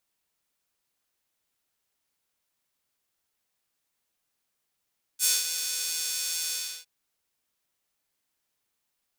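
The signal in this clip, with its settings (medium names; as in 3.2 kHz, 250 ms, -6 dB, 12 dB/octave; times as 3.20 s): synth patch with pulse-width modulation E3, oscillator 2 square, interval +19 st, oscillator 2 level -1.5 dB, filter highpass, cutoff 4.3 kHz, Q 1.1, filter envelope 1 oct, filter decay 0.13 s, attack 50 ms, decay 0.19 s, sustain -10 dB, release 0.34 s, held 1.32 s, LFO 2.3 Hz, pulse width 43%, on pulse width 17%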